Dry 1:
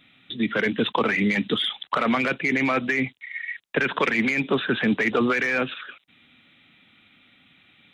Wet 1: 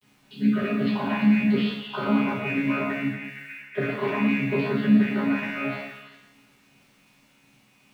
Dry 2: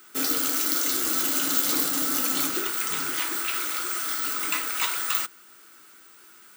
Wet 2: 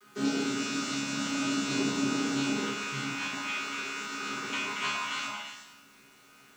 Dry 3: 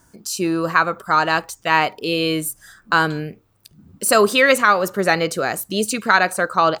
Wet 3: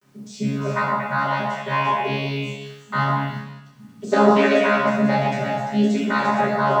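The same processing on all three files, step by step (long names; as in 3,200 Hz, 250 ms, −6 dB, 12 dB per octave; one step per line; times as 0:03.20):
channel vocoder with a chord as carrier bare fifth, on C#3
bit-depth reduction 10 bits, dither none
on a send: echo through a band-pass that steps 115 ms, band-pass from 880 Hz, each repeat 1.4 octaves, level 0 dB
on the sum: coupled-rooms reverb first 0.83 s, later 2.5 s, from −27 dB, DRR −8 dB
level −8 dB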